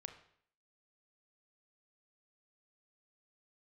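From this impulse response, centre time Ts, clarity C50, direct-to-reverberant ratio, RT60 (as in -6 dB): 13 ms, 10.5 dB, 6.5 dB, 0.60 s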